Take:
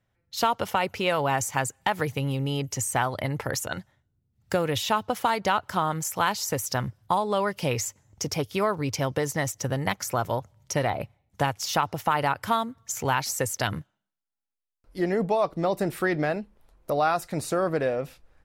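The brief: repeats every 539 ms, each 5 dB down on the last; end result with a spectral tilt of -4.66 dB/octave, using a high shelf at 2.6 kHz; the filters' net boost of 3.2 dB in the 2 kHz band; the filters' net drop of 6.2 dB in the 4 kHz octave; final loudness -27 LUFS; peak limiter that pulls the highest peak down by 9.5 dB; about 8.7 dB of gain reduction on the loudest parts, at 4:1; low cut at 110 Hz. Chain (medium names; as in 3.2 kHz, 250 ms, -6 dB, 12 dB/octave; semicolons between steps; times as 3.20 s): high-pass 110 Hz; peaking EQ 2 kHz +8.5 dB; treble shelf 2.6 kHz -8 dB; peaking EQ 4 kHz -5.5 dB; compression 4:1, threshold -29 dBFS; peak limiter -22.5 dBFS; feedback delay 539 ms, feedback 56%, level -5 dB; trim +7.5 dB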